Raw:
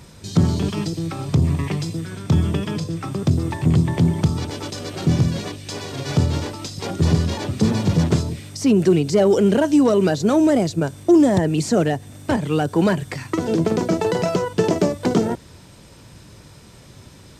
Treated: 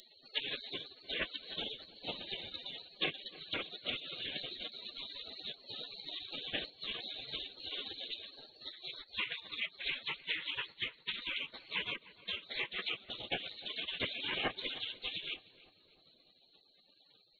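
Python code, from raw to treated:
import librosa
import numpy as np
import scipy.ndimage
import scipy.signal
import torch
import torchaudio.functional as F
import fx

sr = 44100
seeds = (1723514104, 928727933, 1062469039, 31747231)

y = scipy.signal.medfilt(x, 9)
y = scipy.signal.sosfilt(scipy.signal.cheby2(4, 40, 390.0, 'highpass', fs=sr, output='sos'), y)
y = fx.peak_eq(y, sr, hz=1700.0, db=8.5, octaves=1.6)
y = fx.rider(y, sr, range_db=5, speed_s=0.5)
y = fx.env_lowpass_down(y, sr, base_hz=1800.0, full_db=-23.5)
y = fx.lpc_vocoder(y, sr, seeds[0], excitation='whisper', order=10)
y = fx.air_absorb(y, sr, metres=57.0)
y = fx.spec_gate(y, sr, threshold_db=-30, keep='weak')
y = fx.echo_filtered(y, sr, ms=304, feedback_pct=60, hz=1700.0, wet_db=-16.5)
y = y * 10.0 ** (18.0 / 20.0)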